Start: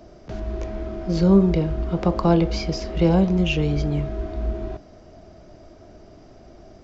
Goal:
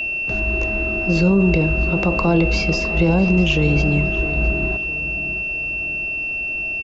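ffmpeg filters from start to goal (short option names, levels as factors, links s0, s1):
-filter_complex "[0:a]aeval=exprs='val(0)+0.0501*sin(2*PI*2700*n/s)':c=same,alimiter=limit=0.237:level=0:latency=1:release=30,asplit=2[s0][s1];[s1]adelay=659,lowpass=f=3200:p=1,volume=0.211,asplit=2[s2][s3];[s3]adelay=659,lowpass=f=3200:p=1,volume=0.46,asplit=2[s4][s5];[s5]adelay=659,lowpass=f=3200:p=1,volume=0.46,asplit=2[s6][s7];[s7]adelay=659,lowpass=f=3200:p=1,volume=0.46[s8];[s2][s4][s6][s8]amix=inputs=4:normalize=0[s9];[s0][s9]amix=inputs=2:normalize=0,volume=1.78"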